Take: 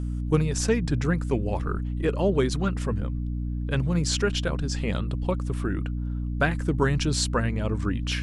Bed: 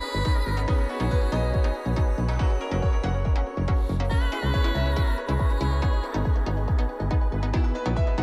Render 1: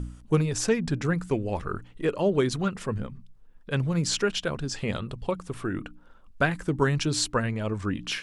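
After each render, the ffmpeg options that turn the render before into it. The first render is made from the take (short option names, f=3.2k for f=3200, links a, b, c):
-af "bandreject=f=60:t=h:w=4,bandreject=f=120:t=h:w=4,bandreject=f=180:t=h:w=4,bandreject=f=240:t=h:w=4,bandreject=f=300:t=h:w=4"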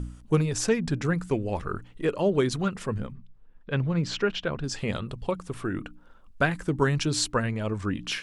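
-filter_complex "[0:a]asettb=1/sr,asplit=3[a][b][c];[a]atrim=end=3.124[d];[b]atrim=start=3.12:end=4.64,asetpts=PTS-STARTPTS,afade=t=in:d=0.004:c=qsin,afade=t=out:st=1.516:d=0.004:c=qsin,lowpass=3.5k[e];[c]atrim=start=4.636[f];[d][e]acrossfade=d=0.004:c1=hsin:c2=qsin[g];[g][f]acrossfade=d=0.004:c1=qsin:c2=hsin"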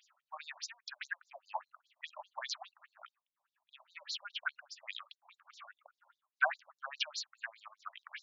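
-af "tremolo=f=2:d=0.79,afftfilt=real='re*between(b*sr/1024,780*pow(5300/780,0.5+0.5*sin(2*PI*4.9*pts/sr))/1.41,780*pow(5300/780,0.5+0.5*sin(2*PI*4.9*pts/sr))*1.41)':imag='im*between(b*sr/1024,780*pow(5300/780,0.5+0.5*sin(2*PI*4.9*pts/sr))/1.41,780*pow(5300/780,0.5+0.5*sin(2*PI*4.9*pts/sr))*1.41)':win_size=1024:overlap=0.75"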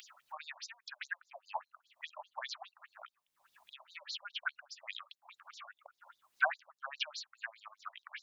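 -filter_complex "[0:a]acrossover=split=1100|2300|3600[a][b][c][d];[d]alimiter=level_in=14.5dB:limit=-24dB:level=0:latency=1:release=75,volume=-14.5dB[e];[a][b][c][e]amix=inputs=4:normalize=0,acompressor=mode=upward:threshold=-46dB:ratio=2.5"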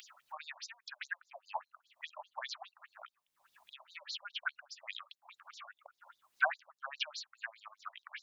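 -af anull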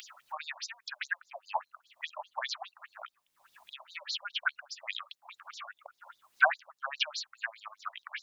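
-af "volume=6.5dB"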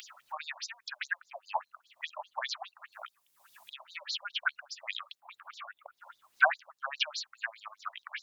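-filter_complex "[0:a]asettb=1/sr,asplit=3[a][b][c];[a]atrim=end=2.924[d];[b]atrim=start=2.92:end=3.7,asetpts=PTS-STARTPTS,afade=t=in:d=0.004:c=qsin,afade=t=out:st=0.776:d=0.004:c=qsin,aemphasis=mode=production:type=cd[e];[c]atrim=start=3.696[f];[d][e]acrossfade=d=0.004:c1=hsin:c2=qsin[g];[g][f]acrossfade=d=0.004:c1=qsin:c2=hsin,asettb=1/sr,asplit=3[h][i][j];[h]atrim=end=5.204[k];[i]atrim=start=5.2:end=5.97,asetpts=PTS-STARTPTS,afade=t=in:d=0.004:c=qsin,afade=t=out:st=0.766:d=0.004:c=qsin,equalizer=f=5.9k:t=o:w=0.92:g=-8[l];[j]atrim=start=5.966[m];[k][l]acrossfade=d=0.004:c1=hsin:c2=qsin[n];[n][m]acrossfade=d=0.004:c1=qsin:c2=hsin"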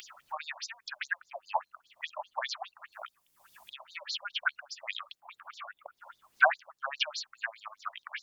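-af "lowshelf=f=450:g=9.5,bandreject=f=3.9k:w=24"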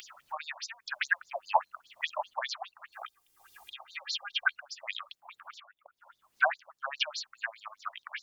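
-filter_complex "[0:a]asettb=1/sr,asplit=3[a][b][c];[a]atrim=end=0.904[d];[b]atrim=start=0.9:end=2.34,asetpts=PTS-STARTPTS,afade=t=in:d=0.004:c=qsin,afade=t=out:st=1.436:d=0.004:c=qsin,acontrast=37[e];[c]atrim=start=2.336[f];[d][e]acrossfade=d=0.004:c1=hsin:c2=qsin[g];[g][f]acrossfade=d=0.004:c1=qsin:c2=hsin,asettb=1/sr,asplit=3[h][i][j];[h]atrim=end=2.924[k];[i]atrim=start=2.92:end=4.54,asetpts=PTS-STARTPTS,afade=t=in:d=0.004:c=qsin,afade=t=out:st=1.616:d=0.004:c=qsin,aecho=1:1:2.5:0.75,atrim=end_sample=71442[l];[j]atrim=start=4.536[m];[k][l]acrossfade=d=0.004:c1=hsin:c2=qsin[n];[n][m]acrossfade=d=0.004:c1=qsin:c2=hsin,asplit=2[o][p];[o]atrim=end=5.6,asetpts=PTS-STARTPTS,afade=t=out:st=5.596:d=0.004:c=hsin:silence=0.188365[q];[p]atrim=start=5.6,asetpts=PTS-STARTPTS,afade=t=in:d=1.37:silence=0.188365[r];[q][r]concat=n=2:v=0:a=1"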